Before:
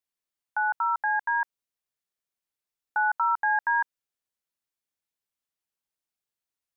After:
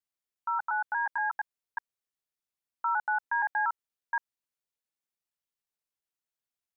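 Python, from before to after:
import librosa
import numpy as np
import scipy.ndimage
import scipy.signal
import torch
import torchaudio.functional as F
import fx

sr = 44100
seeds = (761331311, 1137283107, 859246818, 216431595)

y = fx.block_reorder(x, sr, ms=118.0, group=4)
y = y * 10.0 ** (-4.0 / 20.0)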